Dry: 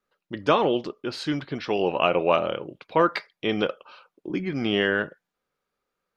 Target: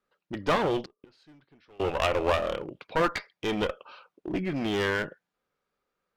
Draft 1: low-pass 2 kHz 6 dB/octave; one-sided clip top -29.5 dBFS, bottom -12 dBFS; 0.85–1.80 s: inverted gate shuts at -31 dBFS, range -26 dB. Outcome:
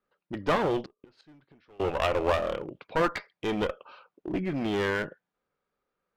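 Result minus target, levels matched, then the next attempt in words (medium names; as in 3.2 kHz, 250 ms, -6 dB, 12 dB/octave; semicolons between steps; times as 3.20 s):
4 kHz band -2.5 dB
low-pass 5.1 kHz 6 dB/octave; one-sided clip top -29.5 dBFS, bottom -12 dBFS; 0.85–1.80 s: inverted gate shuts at -31 dBFS, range -26 dB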